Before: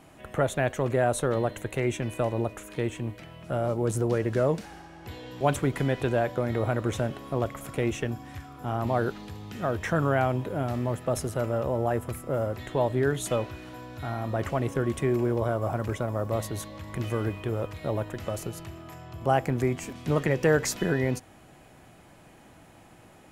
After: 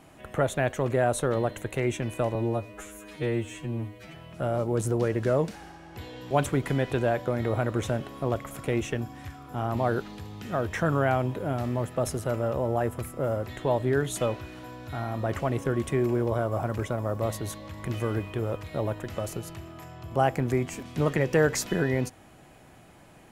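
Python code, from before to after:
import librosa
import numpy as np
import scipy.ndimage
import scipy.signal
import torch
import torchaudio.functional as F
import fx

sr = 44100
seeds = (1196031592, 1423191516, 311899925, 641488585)

y = fx.edit(x, sr, fx.stretch_span(start_s=2.35, length_s=0.9, factor=2.0), tone=tone)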